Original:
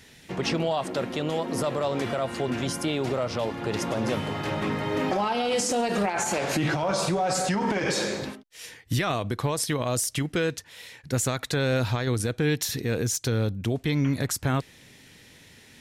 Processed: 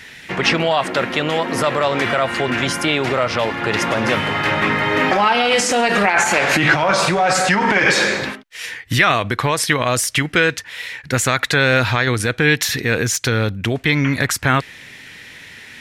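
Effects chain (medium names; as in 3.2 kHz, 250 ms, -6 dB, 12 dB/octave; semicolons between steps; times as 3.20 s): peaking EQ 1.9 kHz +12.5 dB 1.9 oct; trim +5.5 dB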